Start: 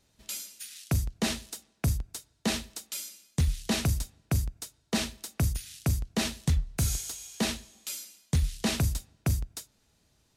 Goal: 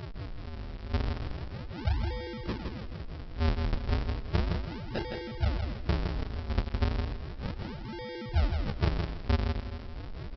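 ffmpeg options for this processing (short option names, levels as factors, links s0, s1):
-af "afftfilt=real='re*gte(hypot(re,im),0.0562)':imag='im*gte(hypot(re,im),0.0562)':win_size=1024:overlap=0.75,firequalizer=gain_entry='entry(100,0);entry(180,-30);entry(740,-17);entry(1600,-13);entry(3700,8)':delay=0.05:min_phase=1,aeval=exprs='val(0)+0.0141*sin(2*PI*880*n/s)':c=same,aresample=11025,acrusher=samples=40:mix=1:aa=0.000001:lfo=1:lforange=64:lforate=0.34,aresample=44100,aecho=1:1:163|326|489:0.562|0.141|0.0351"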